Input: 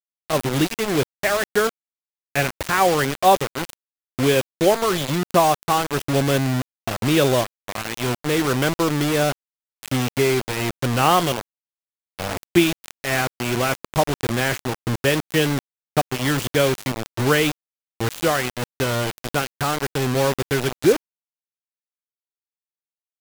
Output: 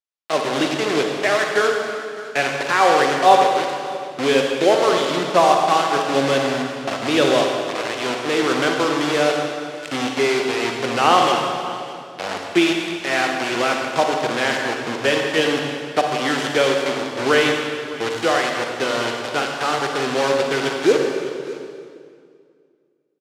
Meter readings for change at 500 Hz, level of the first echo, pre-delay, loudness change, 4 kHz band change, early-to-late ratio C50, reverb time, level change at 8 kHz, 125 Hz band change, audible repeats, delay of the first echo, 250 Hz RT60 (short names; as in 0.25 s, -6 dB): +3.0 dB, -18.0 dB, 38 ms, +2.0 dB, +3.5 dB, 2.0 dB, 2.2 s, -2.0 dB, -9.5 dB, 1, 0.609 s, 2.7 s